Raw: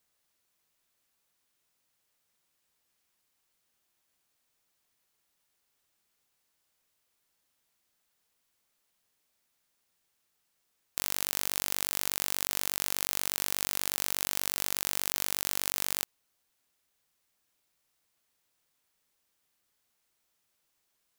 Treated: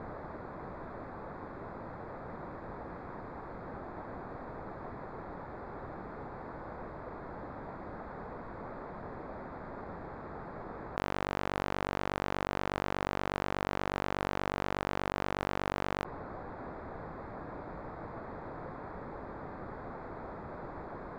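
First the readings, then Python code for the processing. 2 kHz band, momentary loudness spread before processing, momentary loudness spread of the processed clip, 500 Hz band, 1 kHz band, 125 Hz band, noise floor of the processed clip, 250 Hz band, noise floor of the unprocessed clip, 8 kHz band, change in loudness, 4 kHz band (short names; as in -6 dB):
+1.0 dB, 2 LU, 9 LU, +12.0 dB, +9.5 dB, +12.5 dB, -45 dBFS, +12.5 dB, -78 dBFS, -24.5 dB, -9.5 dB, -11.0 dB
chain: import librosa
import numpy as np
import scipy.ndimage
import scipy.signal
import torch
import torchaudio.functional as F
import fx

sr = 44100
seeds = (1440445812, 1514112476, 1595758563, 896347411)

y = fx.wiener(x, sr, points=15)
y = scipy.signal.sosfilt(scipy.signal.butter(2, 1100.0, 'lowpass', fs=sr, output='sos'), y)
y = fx.env_flatten(y, sr, amount_pct=100)
y = F.gain(torch.from_numpy(y), 7.5).numpy()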